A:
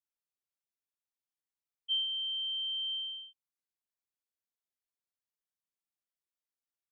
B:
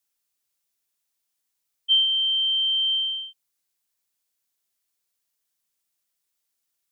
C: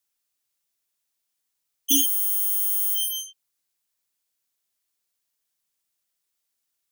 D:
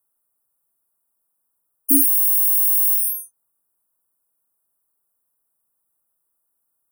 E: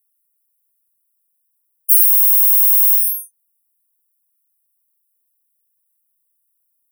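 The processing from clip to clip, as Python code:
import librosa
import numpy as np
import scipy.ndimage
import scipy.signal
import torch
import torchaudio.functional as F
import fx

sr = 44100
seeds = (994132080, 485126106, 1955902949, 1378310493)

y1 = fx.high_shelf(x, sr, hz=3000.0, db=10.0)
y1 = F.gain(torch.from_numpy(y1), 7.5).numpy()
y2 = fx.self_delay(y1, sr, depth_ms=0.92)
y3 = scipy.signal.sosfilt(scipy.signal.cheby2(4, 50, [2400.0, 5600.0], 'bandstop', fs=sr, output='sos'), y2)
y3 = F.gain(torch.from_numpy(y3), 7.0).numpy()
y4 = scipy.signal.lfilter([1.0, -0.97], [1.0], y3)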